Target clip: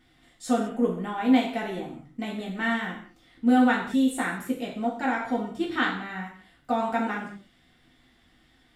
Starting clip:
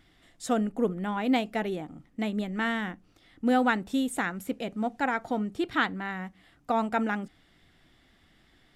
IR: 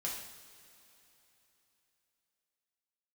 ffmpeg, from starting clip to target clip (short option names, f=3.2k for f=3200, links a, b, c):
-filter_complex "[1:a]atrim=start_sample=2205,afade=t=out:st=0.38:d=0.01,atrim=end_sample=17199,asetrate=66150,aresample=44100[a];[0:a][a]afir=irnorm=-1:irlink=0,volume=3.5dB"